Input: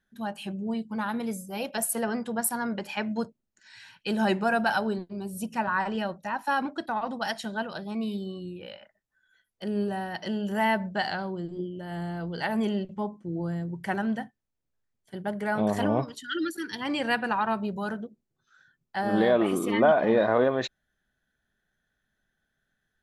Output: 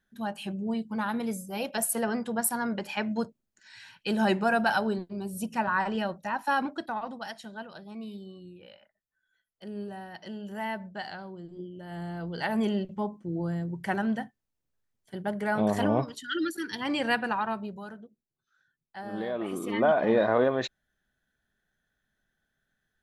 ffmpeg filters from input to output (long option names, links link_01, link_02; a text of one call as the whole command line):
ffmpeg -i in.wav -af "volume=19dB,afade=type=out:start_time=6.59:duration=0.71:silence=0.354813,afade=type=in:start_time=11.43:duration=1.2:silence=0.354813,afade=type=out:start_time=17.1:duration=0.79:silence=0.281838,afade=type=in:start_time=19.33:duration=0.77:silence=0.316228" out.wav